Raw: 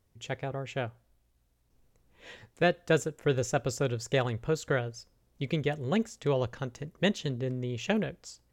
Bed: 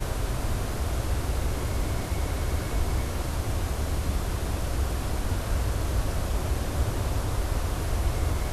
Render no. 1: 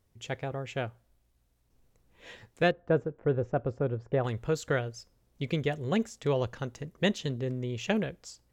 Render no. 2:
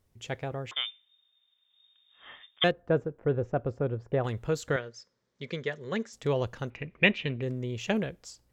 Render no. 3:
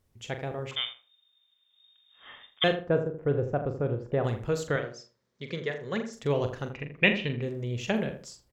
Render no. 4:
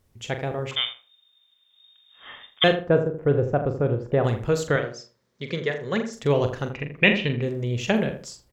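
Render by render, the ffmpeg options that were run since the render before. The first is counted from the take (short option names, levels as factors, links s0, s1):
-filter_complex "[0:a]asettb=1/sr,asplit=3[s0][s1][s2];[s0]atrim=end=2.714[s3];[s1]atrim=start=2.71:end=4.24,asetpts=PTS-STARTPTS,afade=t=in:d=0.004:c=qsin,afade=t=out:st=1.526:d=0.004:c=qsin,lowpass=1100[s4];[s2]atrim=start=4.236[s5];[s3][s4]acrossfade=d=0.004:c1=hsin:c2=qsin[s6];[s6][s5]acrossfade=d=0.004:c1=qsin:c2=hsin"
-filter_complex "[0:a]asettb=1/sr,asplit=3[s0][s1][s2];[s0]atrim=end=0.714[s3];[s1]atrim=start=0.71:end=2.64,asetpts=PTS-STARTPTS,afade=t=in:d=0.004:c=qsin,afade=t=out:st=1.926:d=0.004:c=qsin,lowpass=f=3100:t=q:w=0.5098,lowpass=f=3100:t=q:w=0.6013,lowpass=f=3100:t=q:w=0.9,lowpass=f=3100:t=q:w=2.563,afreqshift=-3700[s4];[s2]atrim=start=2.636[s5];[s3][s4]acrossfade=d=0.004:c1=hsin:c2=qsin[s6];[s6][s5]acrossfade=d=0.004:c1=qsin:c2=hsin,asettb=1/sr,asplit=3[s7][s8][s9];[s7]atrim=end=4.764[s10];[s8]atrim=start=4.76:end=6.13,asetpts=PTS-STARTPTS,afade=t=in:d=0.004:c=qsin,afade=t=out:st=1.366:d=0.004:c=qsin,highpass=230,equalizer=f=300:t=q:w=4:g=-10,equalizer=f=730:t=q:w=4:g=-10,equalizer=f=1800:t=q:w=4:g=4,equalizer=f=2700:t=q:w=4:g=-6,lowpass=f=6400:w=0.5412,lowpass=f=6400:w=1.3066[s11];[s9]atrim=start=6.126[s12];[s10][s11]acrossfade=d=0.004:c1=hsin:c2=qsin[s13];[s13][s12]acrossfade=d=0.004:c1=qsin:c2=hsin,asettb=1/sr,asplit=3[s14][s15][s16];[s14]atrim=end=6.704[s17];[s15]atrim=start=6.7:end=7.42,asetpts=PTS-STARTPTS,afade=t=in:d=0.004:c=qsin,afade=t=out:st=0.716:d=0.004:c=qsin,lowpass=f=2400:t=q:w=12[s18];[s16]atrim=start=7.416[s19];[s17][s18]acrossfade=d=0.004:c1=hsin:c2=qsin[s20];[s20][s19]acrossfade=d=0.004:c1=qsin:c2=hsin"
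-filter_complex "[0:a]asplit=2[s0][s1];[s1]adelay=42,volume=0.355[s2];[s0][s2]amix=inputs=2:normalize=0,asplit=2[s3][s4];[s4]adelay=81,lowpass=f=1300:p=1,volume=0.376,asplit=2[s5][s6];[s6]adelay=81,lowpass=f=1300:p=1,volume=0.27,asplit=2[s7][s8];[s8]adelay=81,lowpass=f=1300:p=1,volume=0.27[s9];[s3][s5][s7][s9]amix=inputs=4:normalize=0"
-af "volume=2,alimiter=limit=0.708:level=0:latency=1"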